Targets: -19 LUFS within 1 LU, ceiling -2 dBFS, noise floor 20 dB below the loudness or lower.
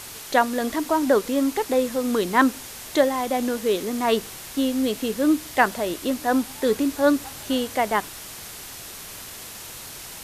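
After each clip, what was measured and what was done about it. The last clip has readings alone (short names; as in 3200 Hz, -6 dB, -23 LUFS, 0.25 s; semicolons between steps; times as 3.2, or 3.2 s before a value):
noise floor -39 dBFS; noise floor target -43 dBFS; loudness -23.0 LUFS; peak -4.0 dBFS; loudness target -19.0 LUFS
-> denoiser 6 dB, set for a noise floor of -39 dBFS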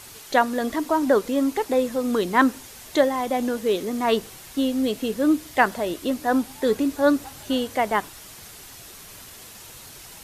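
noise floor -43 dBFS; loudness -23.0 LUFS; peak -4.0 dBFS; loudness target -19.0 LUFS
-> gain +4 dB; limiter -2 dBFS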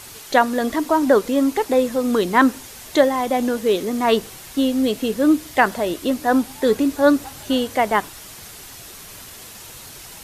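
loudness -19.5 LUFS; peak -2.0 dBFS; noise floor -40 dBFS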